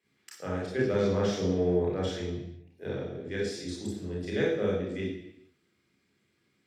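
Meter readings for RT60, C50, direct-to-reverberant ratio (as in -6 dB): 0.80 s, 1.5 dB, -4.5 dB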